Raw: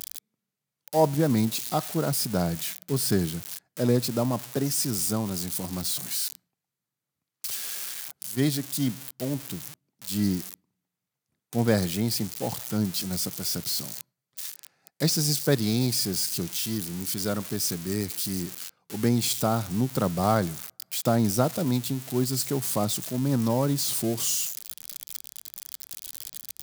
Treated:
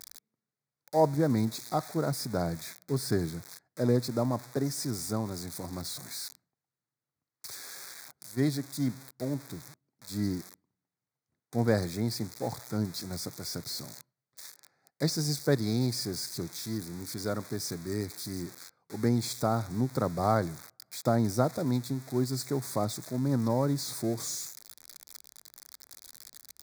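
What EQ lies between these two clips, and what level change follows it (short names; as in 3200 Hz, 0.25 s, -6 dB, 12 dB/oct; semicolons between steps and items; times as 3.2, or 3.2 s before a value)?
Butterworth band-stop 2900 Hz, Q 1.9; bell 190 Hz -7.5 dB 0.27 oct; high shelf 6500 Hz -11.5 dB; -2.5 dB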